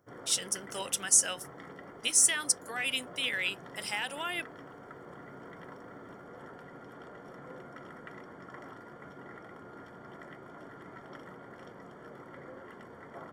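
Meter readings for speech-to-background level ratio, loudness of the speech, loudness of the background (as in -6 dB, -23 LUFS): 20.0 dB, -28.5 LUFS, -48.5 LUFS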